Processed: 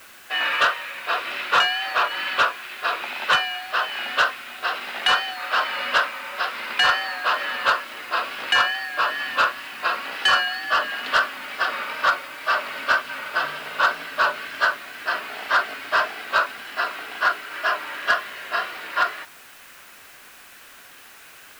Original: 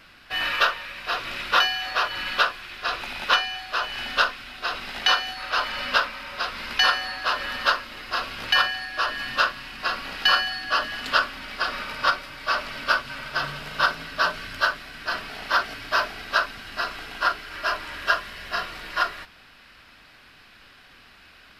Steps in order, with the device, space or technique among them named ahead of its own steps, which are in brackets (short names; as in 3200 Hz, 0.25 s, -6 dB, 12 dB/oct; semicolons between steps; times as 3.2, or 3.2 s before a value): tape answering machine (BPF 370–3200 Hz; soft clip -14.5 dBFS, distortion -16 dB; wow and flutter; white noise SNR 25 dB); gain +4.5 dB